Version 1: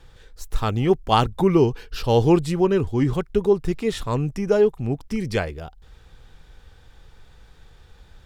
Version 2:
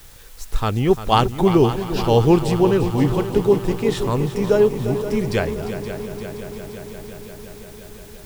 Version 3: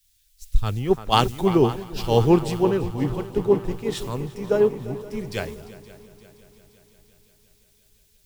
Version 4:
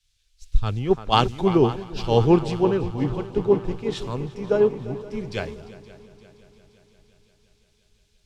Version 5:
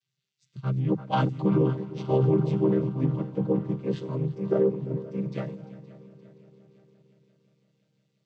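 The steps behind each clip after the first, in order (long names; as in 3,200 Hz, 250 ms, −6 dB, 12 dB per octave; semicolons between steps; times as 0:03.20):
in parallel at −12 dB: bit-depth reduction 6 bits, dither triangular; on the sum: echo machine with several playback heads 174 ms, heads second and third, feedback 72%, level −12 dB
multiband upward and downward expander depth 100%; level −6 dB
low-pass filter 5,400 Hz 12 dB per octave; notch filter 1,900 Hz, Q 15
channel vocoder with a chord as carrier minor triad, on C3; brickwall limiter −14 dBFS, peak gain reduction 10 dB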